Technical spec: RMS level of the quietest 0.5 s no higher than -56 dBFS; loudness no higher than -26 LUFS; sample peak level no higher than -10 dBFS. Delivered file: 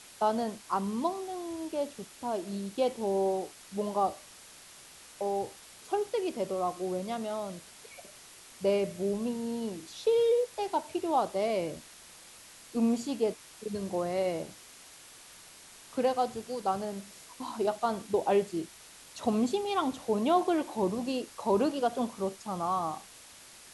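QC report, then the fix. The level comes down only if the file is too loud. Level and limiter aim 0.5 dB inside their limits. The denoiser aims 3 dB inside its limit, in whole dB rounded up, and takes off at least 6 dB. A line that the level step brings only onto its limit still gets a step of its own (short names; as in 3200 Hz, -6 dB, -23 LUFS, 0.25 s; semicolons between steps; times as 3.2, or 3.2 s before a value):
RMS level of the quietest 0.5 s -52 dBFS: fail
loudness -31.5 LUFS: OK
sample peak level -14.5 dBFS: OK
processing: denoiser 7 dB, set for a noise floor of -52 dBFS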